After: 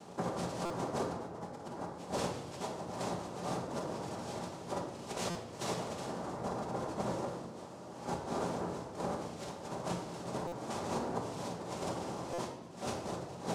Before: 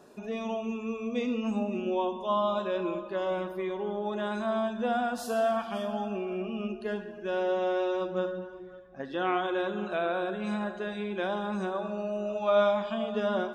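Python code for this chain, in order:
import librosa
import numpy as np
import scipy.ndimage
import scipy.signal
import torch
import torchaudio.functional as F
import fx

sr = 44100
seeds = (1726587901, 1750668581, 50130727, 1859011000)

y = fx.peak_eq(x, sr, hz=2200.0, db=-9.5, octaves=1.8)
y = fx.over_compress(y, sr, threshold_db=-38.0, ratio=-0.5)
y = fx.noise_vocoder(y, sr, seeds[0], bands=2)
y = fx.room_shoebox(y, sr, seeds[1], volume_m3=450.0, walls='mixed', distance_m=1.2)
y = fx.buffer_glitch(y, sr, at_s=(0.65, 5.3, 10.47, 12.33), block=256, repeats=8)
y = F.gain(torch.from_numpy(y), -3.5).numpy()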